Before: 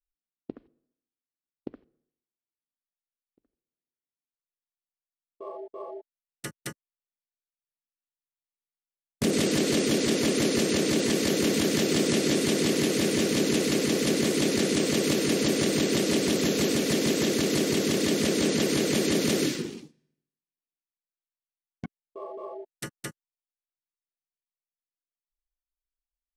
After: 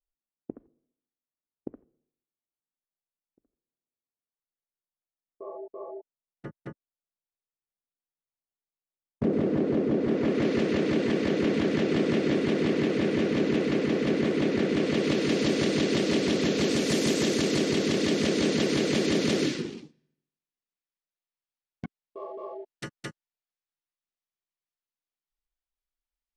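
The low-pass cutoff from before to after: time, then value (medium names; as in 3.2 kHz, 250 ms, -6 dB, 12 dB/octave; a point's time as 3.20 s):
9.96 s 1 kHz
10.50 s 2.3 kHz
14.67 s 2.3 kHz
15.40 s 4.5 kHz
16.56 s 4.5 kHz
17.01 s 9.8 kHz
17.71 s 5.2 kHz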